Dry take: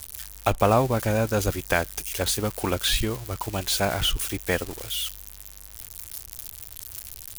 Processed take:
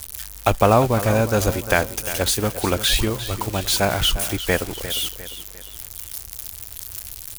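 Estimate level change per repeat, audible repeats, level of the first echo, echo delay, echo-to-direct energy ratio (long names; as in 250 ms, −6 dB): −7.5 dB, 3, −13.0 dB, 351 ms, −12.0 dB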